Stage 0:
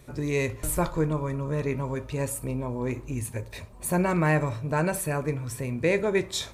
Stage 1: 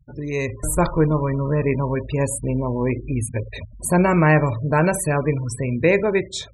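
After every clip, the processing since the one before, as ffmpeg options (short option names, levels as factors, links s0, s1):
-af "lowpass=f=11000:w=0.5412,lowpass=f=11000:w=1.3066,afftfilt=real='re*gte(hypot(re,im),0.0141)':imag='im*gte(hypot(re,im),0.0141)':win_size=1024:overlap=0.75,dynaudnorm=f=130:g=9:m=2.51"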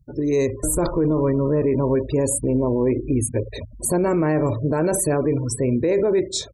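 -af "firequalizer=gain_entry='entry(190,0);entry(310,10);entry(820,0);entry(2900,-8);entry(4200,5)':delay=0.05:min_phase=1,alimiter=limit=0.237:level=0:latency=1:release=23"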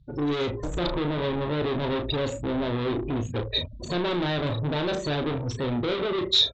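-filter_complex "[0:a]aresample=16000,asoftclip=type=tanh:threshold=0.0531,aresample=44100,lowpass=f=3700:t=q:w=7.1,asplit=2[s0][s1];[s1]adelay=34,volume=0.422[s2];[s0][s2]amix=inputs=2:normalize=0"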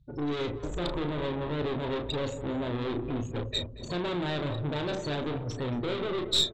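-filter_complex "[0:a]aeval=exprs='(tanh(4.47*val(0)+0.65)-tanh(0.65))/4.47':c=same,asplit=2[s0][s1];[s1]adelay=230,lowpass=f=1000:p=1,volume=0.299,asplit=2[s2][s3];[s3]adelay=230,lowpass=f=1000:p=1,volume=0.53,asplit=2[s4][s5];[s5]adelay=230,lowpass=f=1000:p=1,volume=0.53,asplit=2[s6][s7];[s7]adelay=230,lowpass=f=1000:p=1,volume=0.53,asplit=2[s8][s9];[s9]adelay=230,lowpass=f=1000:p=1,volume=0.53,asplit=2[s10][s11];[s11]adelay=230,lowpass=f=1000:p=1,volume=0.53[s12];[s2][s4][s6][s8][s10][s12]amix=inputs=6:normalize=0[s13];[s0][s13]amix=inputs=2:normalize=0,volume=0.841"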